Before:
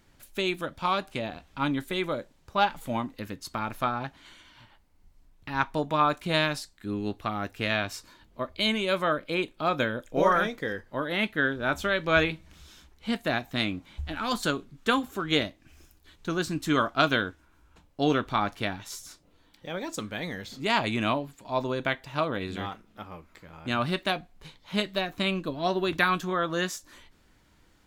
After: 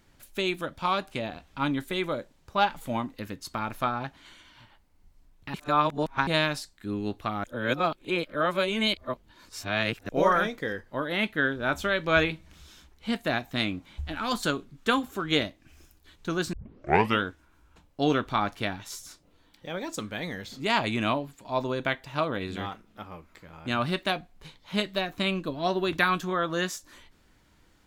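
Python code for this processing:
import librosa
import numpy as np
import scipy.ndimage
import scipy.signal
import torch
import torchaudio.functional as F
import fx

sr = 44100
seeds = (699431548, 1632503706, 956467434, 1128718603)

y = fx.edit(x, sr, fx.reverse_span(start_s=5.54, length_s=0.73),
    fx.reverse_span(start_s=7.44, length_s=2.65),
    fx.tape_start(start_s=16.53, length_s=0.7), tone=tone)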